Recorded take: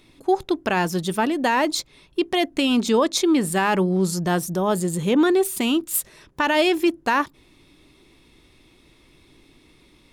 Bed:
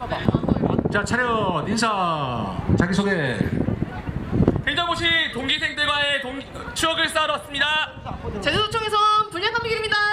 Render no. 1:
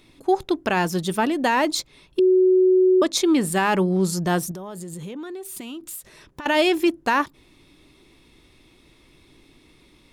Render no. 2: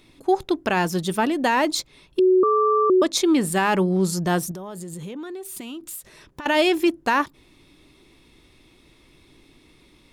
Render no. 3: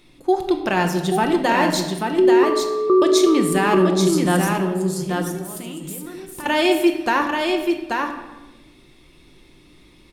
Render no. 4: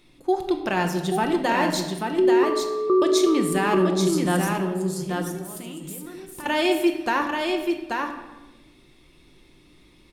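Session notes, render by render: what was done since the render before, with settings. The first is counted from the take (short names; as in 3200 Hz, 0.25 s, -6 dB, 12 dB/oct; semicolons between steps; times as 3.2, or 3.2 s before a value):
2.19–3.02 bleep 371 Hz -12.5 dBFS; 4.51–6.46 compressor 16:1, threshold -31 dBFS
2.43–2.9 ring modulator 800 Hz
on a send: echo 0.834 s -4 dB; on the sum: shoebox room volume 670 m³, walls mixed, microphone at 0.89 m
gain -4 dB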